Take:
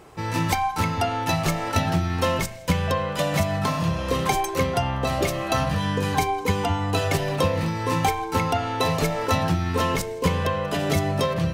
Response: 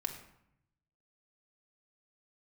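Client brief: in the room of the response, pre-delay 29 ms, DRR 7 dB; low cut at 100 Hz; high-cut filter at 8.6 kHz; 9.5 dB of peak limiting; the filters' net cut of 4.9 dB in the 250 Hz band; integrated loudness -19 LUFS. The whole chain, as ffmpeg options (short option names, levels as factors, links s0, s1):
-filter_complex "[0:a]highpass=100,lowpass=8600,equalizer=f=250:t=o:g=-7.5,alimiter=limit=0.126:level=0:latency=1,asplit=2[s0][s1];[1:a]atrim=start_sample=2205,adelay=29[s2];[s1][s2]afir=irnorm=-1:irlink=0,volume=0.398[s3];[s0][s3]amix=inputs=2:normalize=0,volume=2.51"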